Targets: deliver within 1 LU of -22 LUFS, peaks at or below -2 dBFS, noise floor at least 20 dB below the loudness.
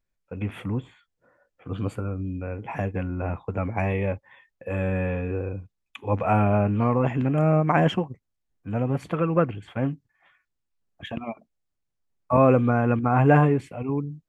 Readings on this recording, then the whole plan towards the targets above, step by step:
loudness -24.5 LUFS; peak level -5.5 dBFS; loudness target -22.0 LUFS
-> trim +2.5 dB

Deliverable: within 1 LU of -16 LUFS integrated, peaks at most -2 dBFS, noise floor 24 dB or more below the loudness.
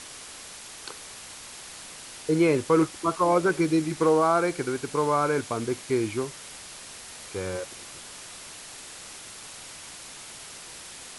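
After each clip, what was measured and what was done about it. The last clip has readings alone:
noise floor -43 dBFS; noise floor target -49 dBFS; loudness -25.0 LUFS; peak level -9.5 dBFS; loudness target -16.0 LUFS
-> noise reduction 6 dB, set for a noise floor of -43 dBFS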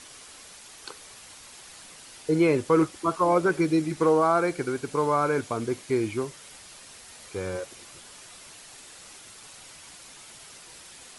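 noise floor -48 dBFS; noise floor target -50 dBFS
-> noise reduction 6 dB, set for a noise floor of -48 dBFS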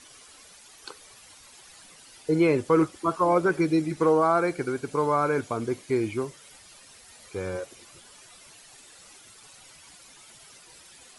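noise floor -52 dBFS; loudness -25.5 LUFS; peak level -9.5 dBFS; loudness target -16.0 LUFS
-> trim +9.5 dB; peak limiter -2 dBFS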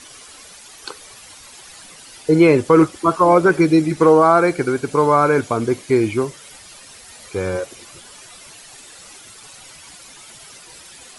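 loudness -16.0 LUFS; peak level -2.0 dBFS; noise floor -42 dBFS

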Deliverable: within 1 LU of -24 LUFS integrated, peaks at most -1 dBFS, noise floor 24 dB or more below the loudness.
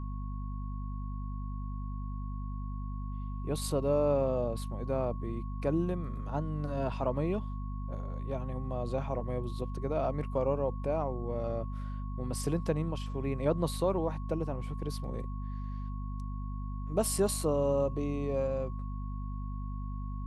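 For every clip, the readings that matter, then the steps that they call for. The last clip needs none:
hum 50 Hz; highest harmonic 250 Hz; hum level -34 dBFS; steady tone 1.1 kHz; tone level -49 dBFS; loudness -34.5 LUFS; peak level -16.0 dBFS; loudness target -24.0 LUFS
-> hum notches 50/100/150/200/250 Hz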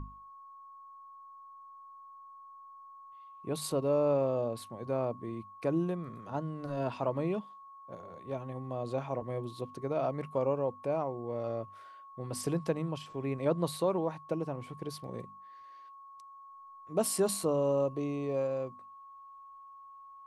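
hum not found; steady tone 1.1 kHz; tone level -49 dBFS
-> band-stop 1.1 kHz, Q 30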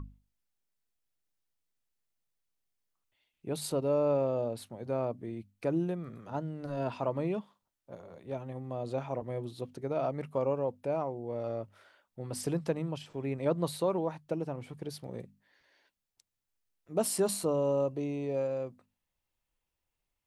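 steady tone not found; loudness -34.0 LUFS; peak level -17.0 dBFS; loudness target -24.0 LUFS
-> trim +10 dB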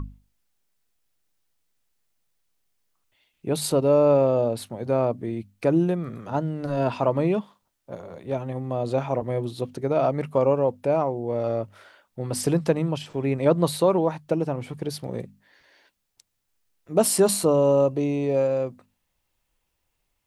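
loudness -24.0 LUFS; peak level -7.0 dBFS; noise floor -76 dBFS

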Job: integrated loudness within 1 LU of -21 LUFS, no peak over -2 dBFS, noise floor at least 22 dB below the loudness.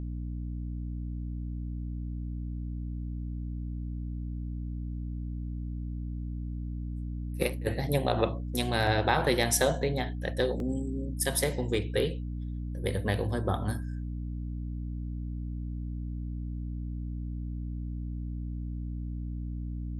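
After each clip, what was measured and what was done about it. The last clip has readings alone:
dropouts 4; longest dropout 1.4 ms; hum 60 Hz; highest harmonic 300 Hz; hum level -33 dBFS; loudness -33.0 LUFS; peak level -10.0 dBFS; loudness target -21.0 LUFS
-> interpolate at 8.87/9.62/10.60/11.75 s, 1.4 ms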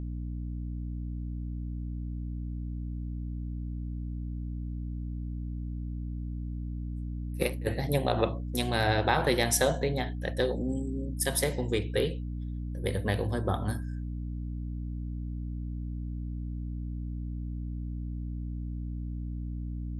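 dropouts 0; hum 60 Hz; highest harmonic 300 Hz; hum level -33 dBFS
-> de-hum 60 Hz, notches 5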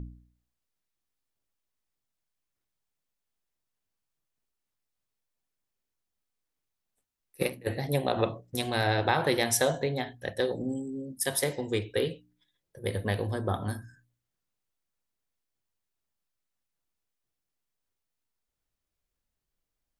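hum not found; loudness -30.0 LUFS; peak level -10.0 dBFS; loudness target -21.0 LUFS
-> trim +9 dB; peak limiter -2 dBFS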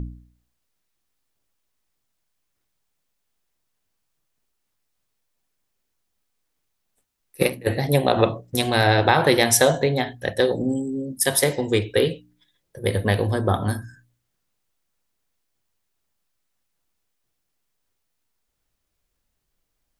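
loudness -21.0 LUFS; peak level -2.0 dBFS; noise floor -76 dBFS

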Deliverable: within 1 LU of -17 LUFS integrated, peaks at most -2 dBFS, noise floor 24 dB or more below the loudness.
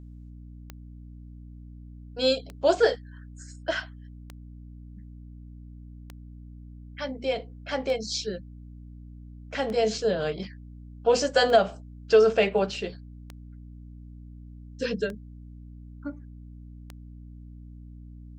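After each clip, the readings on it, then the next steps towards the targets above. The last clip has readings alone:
clicks found 10; hum 60 Hz; highest harmonic 300 Hz; hum level -41 dBFS; loudness -26.0 LUFS; peak level -8.0 dBFS; loudness target -17.0 LUFS
-> de-click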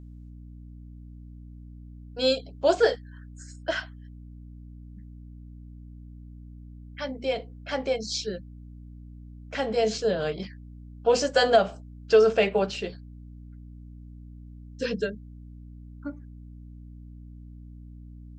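clicks found 0; hum 60 Hz; highest harmonic 300 Hz; hum level -41 dBFS
-> hum notches 60/120/180/240/300 Hz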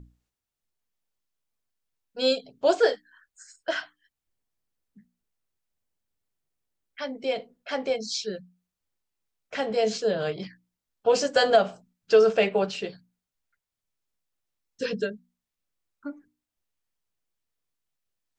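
hum not found; loudness -26.0 LUFS; peak level -7.5 dBFS; loudness target -17.0 LUFS
-> trim +9 dB; peak limiter -2 dBFS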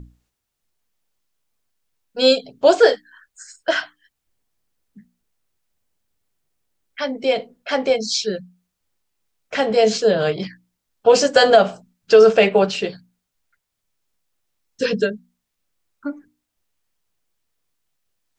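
loudness -17.5 LUFS; peak level -2.0 dBFS; noise floor -79 dBFS

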